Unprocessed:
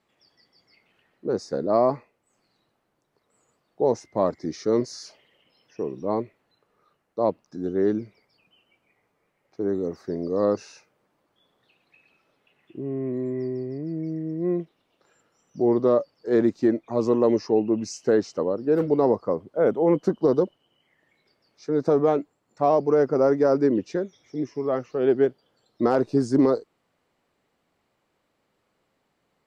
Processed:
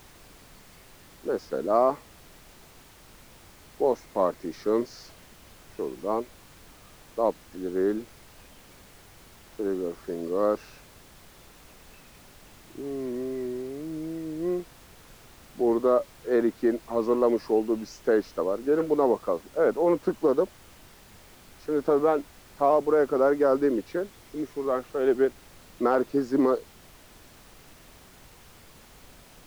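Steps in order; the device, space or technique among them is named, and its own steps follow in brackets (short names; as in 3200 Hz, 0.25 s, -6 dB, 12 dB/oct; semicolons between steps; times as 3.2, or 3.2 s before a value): horn gramophone (BPF 250–4000 Hz; bell 1300 Hz +5 dB 0.77 oct; wow and flutter; pink noise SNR 23 dB); gain -2 dB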